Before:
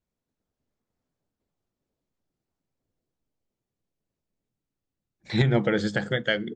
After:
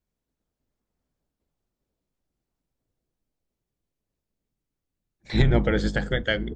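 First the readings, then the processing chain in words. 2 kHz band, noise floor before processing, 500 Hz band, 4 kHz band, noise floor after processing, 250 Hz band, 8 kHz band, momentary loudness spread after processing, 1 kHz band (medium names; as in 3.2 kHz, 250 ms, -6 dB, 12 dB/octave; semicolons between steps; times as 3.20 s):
0.0 dB, under -85 dBFS, 0.0 dB, 0.0 dB, -85 dBFS, +0.5 dB, no reading, 5 LU, 0.0 dB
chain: octave divider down 2 oct, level +1 dB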